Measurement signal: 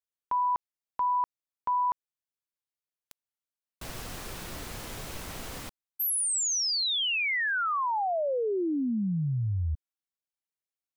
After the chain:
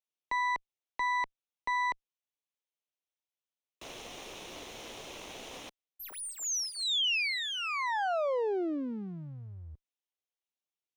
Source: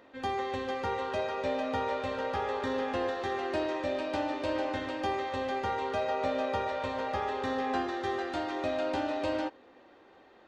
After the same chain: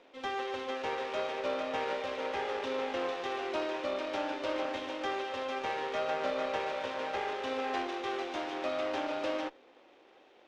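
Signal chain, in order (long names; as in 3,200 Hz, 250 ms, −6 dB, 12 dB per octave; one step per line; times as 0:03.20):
lower of the sound and its delayed copy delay 0.31 ms
three-way crossover with the lows and the highs turned down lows −17 dB, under 290 Hz, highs −16 dB, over 6,900 Hz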